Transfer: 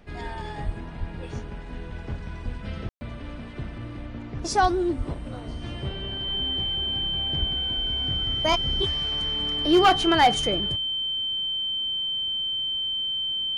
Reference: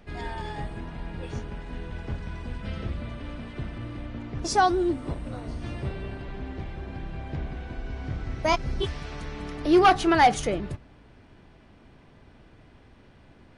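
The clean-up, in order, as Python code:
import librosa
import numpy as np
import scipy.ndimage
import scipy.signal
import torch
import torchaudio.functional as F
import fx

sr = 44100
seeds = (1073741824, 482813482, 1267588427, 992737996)

y = fx.fix_declip(x, sr, threshold_db=-11.5)
y = fx.notch(y, sr, hz=3100.0, q=30.0)
y = fx.fix_deplosive(y, sr, at_s=(0.65, 0.99, 2.44, 4.61, 4.97, 7.39))
y = fx.fix_ambience(y, sr, seeds[0], print_start_s=0.0, print_end_s=0.5, start_s=2.89, end_s=3.01)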